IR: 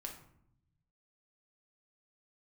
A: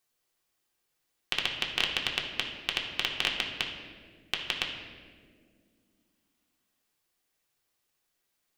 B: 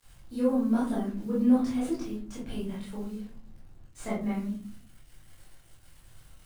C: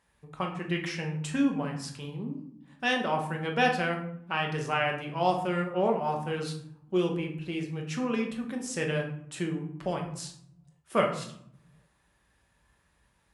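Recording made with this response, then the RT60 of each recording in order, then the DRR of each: C; 1.9, 0.50, 0.70 seconds; −1.5, −8.0, 1.0 decibels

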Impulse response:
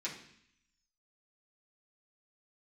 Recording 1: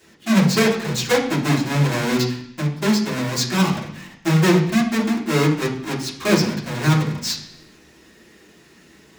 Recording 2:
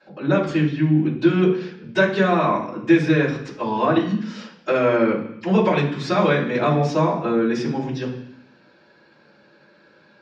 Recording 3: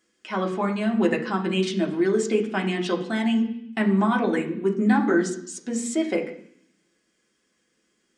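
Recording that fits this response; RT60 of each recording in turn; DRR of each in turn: 1; 0.65, 0.65, 0.65 seconds; −8.0, −14.0, 1.0 decibels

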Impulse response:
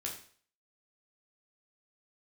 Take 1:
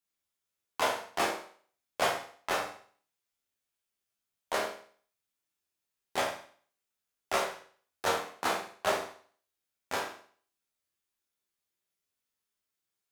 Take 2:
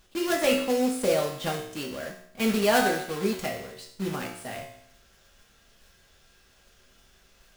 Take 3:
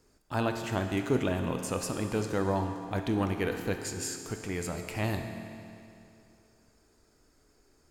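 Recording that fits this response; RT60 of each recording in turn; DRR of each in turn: 1; 0.50, 0.65, 2.6 seconds; −2.0, −1.0, 5.0 decibels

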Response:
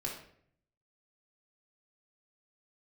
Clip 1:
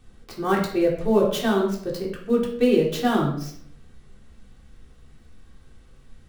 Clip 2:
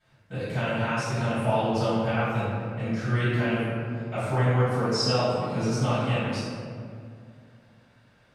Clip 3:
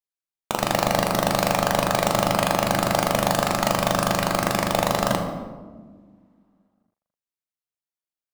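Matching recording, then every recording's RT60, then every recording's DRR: 1; 0.60, 2.2, 1.6 seconds; −3.0, −16.5, 3.0 decibels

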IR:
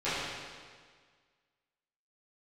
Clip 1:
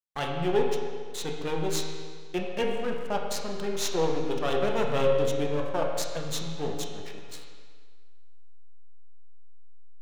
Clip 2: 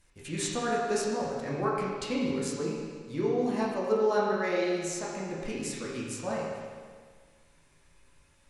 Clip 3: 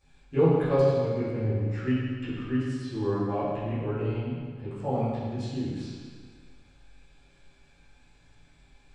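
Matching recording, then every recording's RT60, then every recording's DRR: 3; 1.7, 1.7, 1.7 seconds; −0.5, −6.0, −16.0 decibels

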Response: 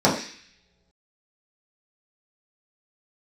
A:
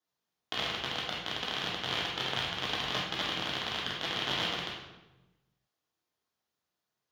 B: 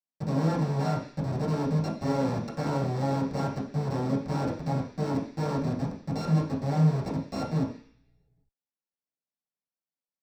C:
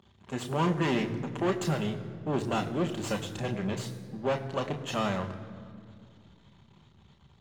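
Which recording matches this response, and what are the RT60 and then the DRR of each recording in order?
B; 1.1 s, non-exponential decay, 2.3 s; −4.0, −7.0, 4.0 decibels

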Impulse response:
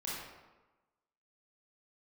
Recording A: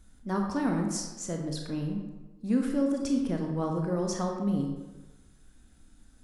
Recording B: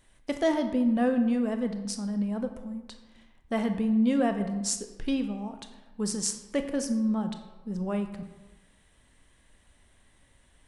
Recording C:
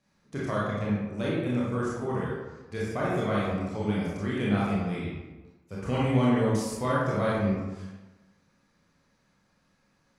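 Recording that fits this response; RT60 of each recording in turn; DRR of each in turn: C; 1.1, 1.1, 1.1 seconds; 1.5, 7.0, −7.0 decibels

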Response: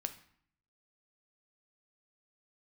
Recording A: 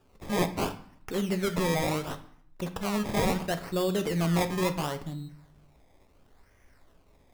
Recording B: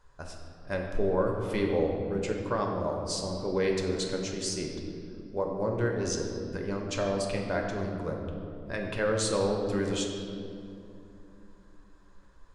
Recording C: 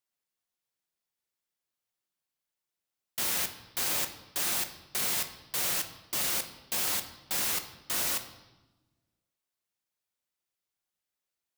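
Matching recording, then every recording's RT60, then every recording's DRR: A; 0.60, 2.7, 1.1 seconds; 8.0, 0.5, 6.5 decibels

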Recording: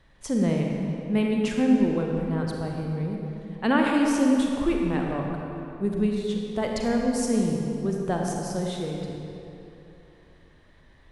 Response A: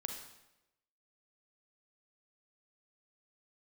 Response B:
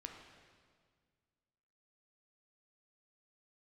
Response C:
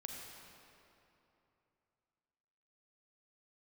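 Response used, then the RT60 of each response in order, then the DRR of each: C; 0.95, 1.8, 3.0 seconds; 3.5, 2.0, 0.0 decibels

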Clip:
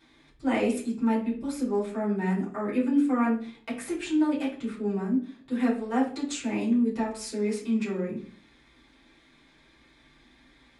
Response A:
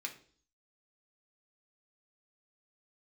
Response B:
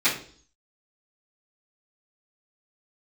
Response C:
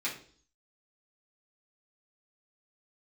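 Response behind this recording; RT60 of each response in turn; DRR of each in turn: C; 0.50, 0.50, 0.50 seconds; 1.5, −16.0, −8.0 decibels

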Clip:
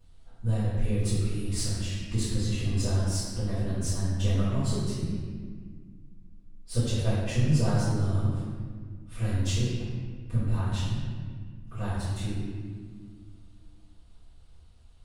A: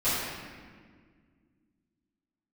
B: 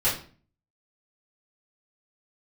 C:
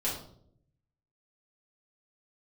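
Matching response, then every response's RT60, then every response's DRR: A; 1.8, 0.40, 0.65 seconds; −16.5, −11.0, −7.5 decibels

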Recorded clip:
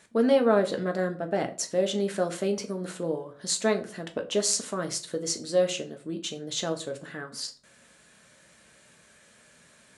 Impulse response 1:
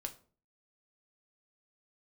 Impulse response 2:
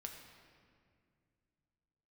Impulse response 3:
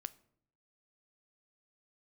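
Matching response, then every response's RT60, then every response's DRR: 1; 0.45, 2.2, 0.65 seconds; 4.5, 2.0, 14.0 decibels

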